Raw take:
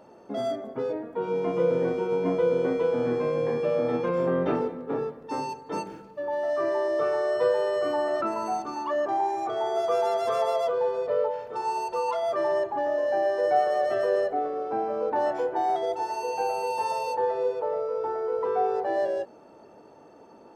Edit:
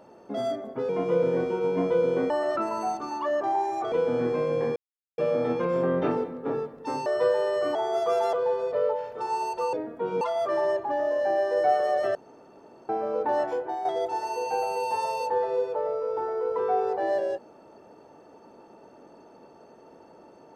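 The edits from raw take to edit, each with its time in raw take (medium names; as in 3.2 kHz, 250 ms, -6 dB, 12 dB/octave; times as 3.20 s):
0.89–1.37 s: move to 12.08 s
3.62 s: insert silence 0.42 s
5.50–7.26 s: delete
7.95–9.57 s: move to 2.78 s
10.15–10.68 s: delete
14.02–14.76 s: room tone
15.31–15.72 s: fade out, to -9 dB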